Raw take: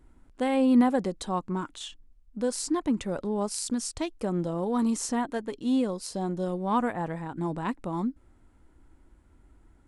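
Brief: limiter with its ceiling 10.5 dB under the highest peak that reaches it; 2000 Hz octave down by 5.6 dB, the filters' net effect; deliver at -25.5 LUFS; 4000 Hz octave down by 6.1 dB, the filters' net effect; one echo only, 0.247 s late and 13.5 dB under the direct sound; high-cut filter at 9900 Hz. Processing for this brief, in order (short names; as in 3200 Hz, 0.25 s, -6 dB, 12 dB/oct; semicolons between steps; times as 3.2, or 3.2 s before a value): LPF 9900 Hz; bell 2000 Hz -6 dB; bell 4000 Hz -6.5 dB; limiter -23.5 dBFS; echo 0.247 s -13.5 dB; gain +7.5 dB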